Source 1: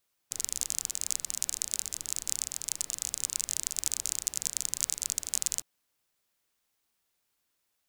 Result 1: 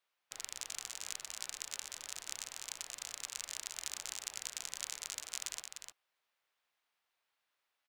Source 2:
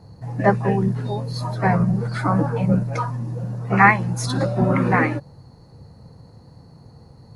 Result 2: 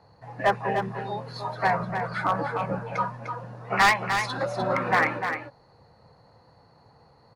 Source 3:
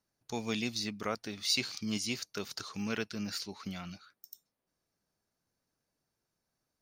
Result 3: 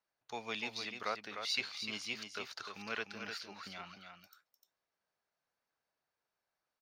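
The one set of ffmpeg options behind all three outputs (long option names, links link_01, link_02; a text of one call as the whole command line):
ffmpeg -i in.wav -filter_complex "[0:a]acrossover=split=520 3900:gain=0.158 1 0.178[link_01][link_02][link_03];[link_01][link_02][link_03]amix=inputs=3:normalize=0,volume=15dB,asoftclip=hard,volume=-15dB,asplit=2[link_04][link_05];[link_05]aecho=0:1:301:0.447[link_06];[link_04][link_06]amix=inputs=2:normalize=0" out.wav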